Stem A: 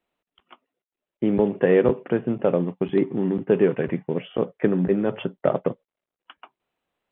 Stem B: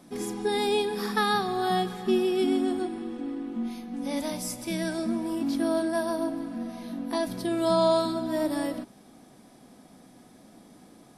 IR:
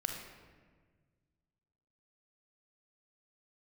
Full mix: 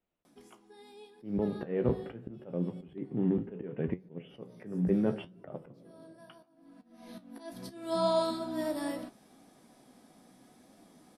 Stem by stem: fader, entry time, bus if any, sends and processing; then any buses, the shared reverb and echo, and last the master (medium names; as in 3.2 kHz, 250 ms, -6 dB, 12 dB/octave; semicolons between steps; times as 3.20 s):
-7.5 dB, 0.00 s, send -18 dB, bass shelf 330 Hz +11.5 dB
-1.0 dB, 0.25 s, no send, bass shelf 180 Hz -5 dB; auto duck -22 dB, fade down 0.30 s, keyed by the first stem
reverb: on, RT60 1.5 s, pre-delay 31 ms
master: slow attack 331 ms; flange 0.74 Hz, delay 9.9 ms, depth 8.8 ms, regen +59%